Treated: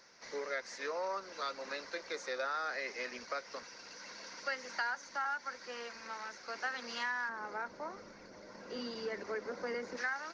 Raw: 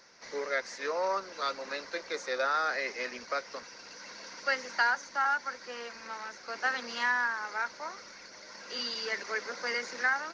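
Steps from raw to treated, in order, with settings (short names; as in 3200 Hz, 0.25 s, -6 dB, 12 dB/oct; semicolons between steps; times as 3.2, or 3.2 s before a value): 7.29–9.97 tilt shelf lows +10 dB; compressor 2:1, threshold -34 dBFS, peak gain reduction 7 dB; gain -3 dB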